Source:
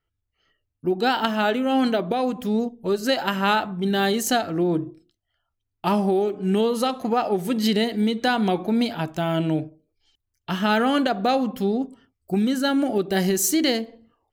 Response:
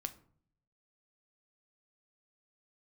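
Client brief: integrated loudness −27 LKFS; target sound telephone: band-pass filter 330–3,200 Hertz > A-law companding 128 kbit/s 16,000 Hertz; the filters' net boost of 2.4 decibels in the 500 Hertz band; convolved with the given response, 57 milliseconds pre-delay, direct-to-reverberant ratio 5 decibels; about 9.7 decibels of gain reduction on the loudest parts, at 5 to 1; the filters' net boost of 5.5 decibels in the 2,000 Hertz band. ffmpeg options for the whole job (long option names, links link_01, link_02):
-filter_complex "[0:a]equalizer=frequency=500:width_type=o:gain=4,equalizer=frequency=2000:width_type=o:gain=8,acompressor=threshold=-25dB:ratio=5,asplit=2[link_01][link_02];[1:a]atrim=start_sample=2205,adelay=57[link_03];[link_02][link_03]afir=irnorm=-1:irlink=0,volume=-3.5dB[link_04];[link_01][link_04]amix=inputs=2:normalize=0,highpass=330,lowpass=3200,volume=2.5dB" -ar 16000 -c:a pcm_alaw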